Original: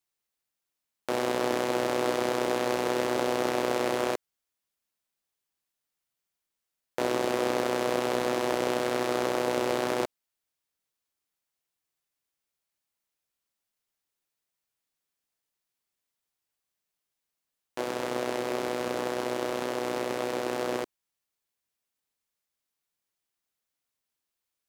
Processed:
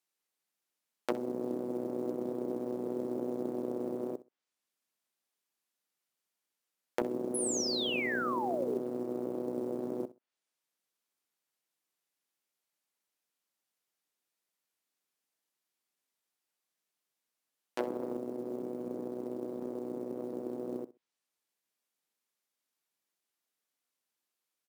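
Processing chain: Chebyshev high-pass 220 Hz, order 2; treble ducked by the level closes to 310 Hz, closed at -27 dBFS; painted sound fall, 7.34–8.78, 370–11000 Hz -35 dBFS; short-mantissa float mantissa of 4-bit; on a send: feedback echo 64 ms, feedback 18%, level -17 dB

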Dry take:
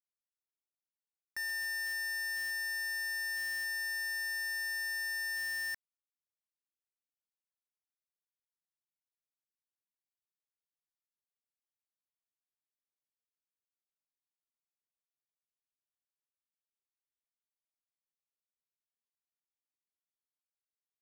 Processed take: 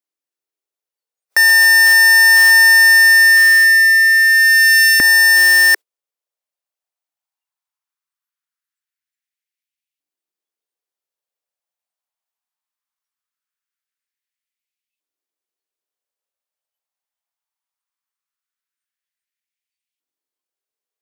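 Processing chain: spectral noise reduction 21 dB; LFO high-pass saw up 0.2 Hz 290–2600 Hz; maximiser +31 dB; gain -4.5 dB

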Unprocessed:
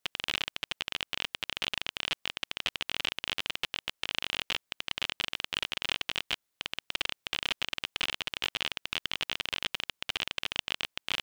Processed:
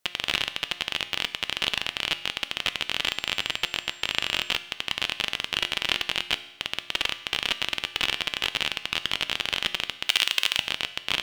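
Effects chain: 3.05–4.52 whine 7400 Hz -58 dBFS; 10.06–10.57 tilt +3 dB/oct; on a send: reverb RT60 0.95 s, pre-delay 3 ms, DRR 11 dB; on the sum: gain +6 dB

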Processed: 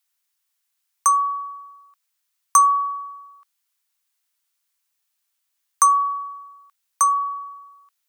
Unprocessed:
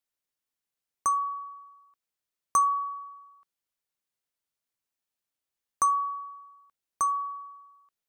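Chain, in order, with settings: HPF 810 Hz 24 dB/oct; tilt +1.5 dB/oct; gain +8.5 dB

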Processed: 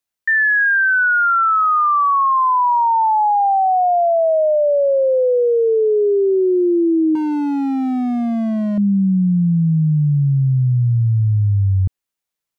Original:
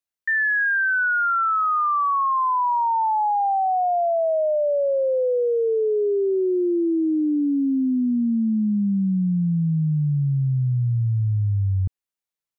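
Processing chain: 7.15–8.78 hard clip -23.5 dBFS, distortion -16 dB; gain +6 dB

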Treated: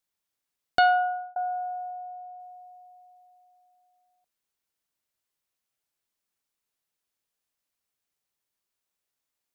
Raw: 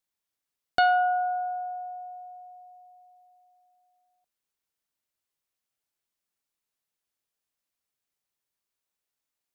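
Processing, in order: 0.86–1.36 fade out; 1.9–2.4 LPF 2600 Hz 6 dB/oct; gain +1.5 dB

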